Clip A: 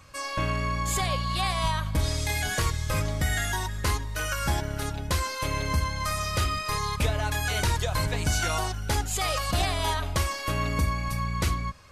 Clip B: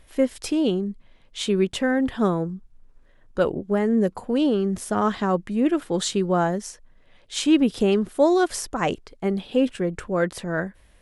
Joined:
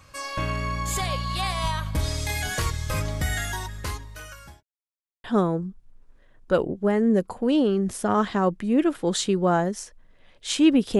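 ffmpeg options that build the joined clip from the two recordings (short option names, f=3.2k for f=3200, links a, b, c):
-filter_complex "[0:a]apad=whole_dur=10.99,atrim=end=10.99,asplit=2[a][b];[a]atrim=end=4.63,asetpts=PTS-STARTPTS,afade=t=out:st=3.3:d=1.33[c];[b]atrim=start=4.63:end=5.24,asetpts=PTS-STARTPTS,volume=0[d];[1:a]atrim=start=2.11:end=7.86,asetpts=PTS-STARTPTS,afade=t=in:d=0.004:c=hsin[e];[c][d][e]concat=n=3:v=0:a=1"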